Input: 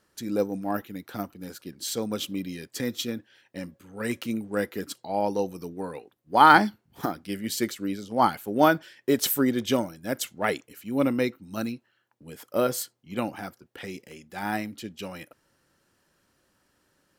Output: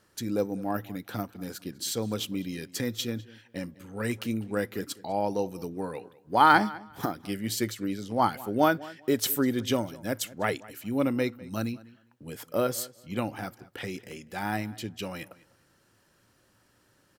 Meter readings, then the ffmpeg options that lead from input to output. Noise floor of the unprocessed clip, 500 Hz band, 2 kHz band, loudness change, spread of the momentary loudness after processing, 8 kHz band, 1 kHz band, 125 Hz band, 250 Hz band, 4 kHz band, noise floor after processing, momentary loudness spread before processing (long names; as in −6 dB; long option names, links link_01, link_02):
−71 dBFS, −2.5 dB, −3.0 dB, −3.0 dB, 14 LU, −1.0 dB, −3.5 dB, +1.5 dB, −2.0 dB, −1.5 dB, −66 dBFS, 18 LU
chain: -filter_complex "[0:a]equalizer=frequency=110:width=7.2:gain=10.5,asplit=2[link_01][link_02];[link_02]acompressor=threshold=-36dB:ratio=6,volume=2.5dB[link_03];[link_01][link_03]amix=inputs=2:normalize=0,asplit=2[link_04][link_05];[link_05]adelay=201,lowpass=frequency=4500:poles=1,volume=-20dB,asplit=2[link_06][link_07];[link_07]adelay=201,lowpass=frequency=4500:poles=1,volume=0.2[link_08];[link_04][link_06][link_08]amix=inputs=3:normalize=0,volume=-4.5dB"